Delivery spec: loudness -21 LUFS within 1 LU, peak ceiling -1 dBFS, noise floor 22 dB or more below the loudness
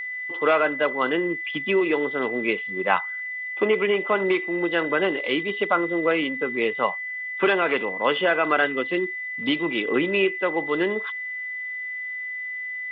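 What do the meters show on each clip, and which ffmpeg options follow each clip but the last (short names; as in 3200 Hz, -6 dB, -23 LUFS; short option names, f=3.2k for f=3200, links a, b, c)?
steady tone 2000 Hz; tone level -29 dBFS; loudness -24.0 LUFS; peak -6.0 dBFS; loudness target -21.0 LUFS
-> -af "bandreject=f=2k:w=30"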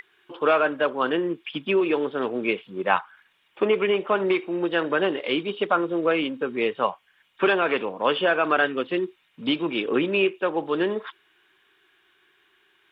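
steady tone none; loudness -24.5 LUFS; peak -6.0 dBFS; loudness target -21.0 LUFS
-> -af "volume=3.5dB"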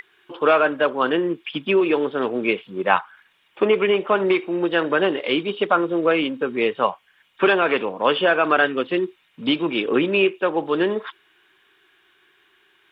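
loudness -21.0 LUFS; peak -2.5 dBFS; noise floor -62 dBFS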